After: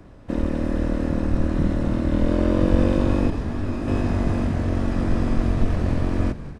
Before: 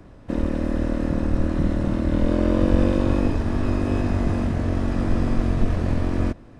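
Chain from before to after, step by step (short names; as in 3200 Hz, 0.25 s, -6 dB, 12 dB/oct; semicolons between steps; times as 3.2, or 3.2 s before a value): frequency-shifting echo 0.194 s, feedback 56%, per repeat -76 Hz, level -14 dB; 3.3–3.88 detuned doubles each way 51 cents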